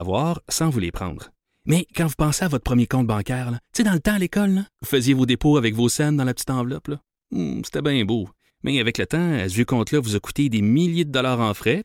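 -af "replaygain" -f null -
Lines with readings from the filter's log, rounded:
track_gain = +1.7 dB
track_peak = 0.337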